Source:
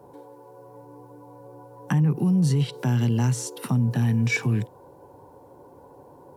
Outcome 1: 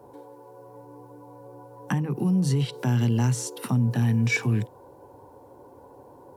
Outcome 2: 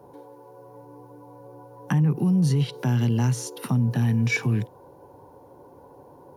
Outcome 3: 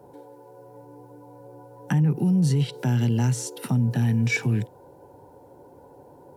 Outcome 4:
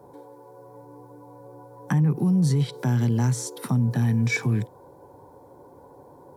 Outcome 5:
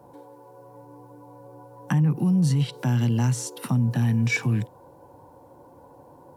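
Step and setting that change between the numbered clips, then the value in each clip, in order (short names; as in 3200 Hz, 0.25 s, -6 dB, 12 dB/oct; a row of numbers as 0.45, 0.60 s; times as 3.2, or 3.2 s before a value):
notch, frequency: 160, 7800, 1100, 2800, 410 Hz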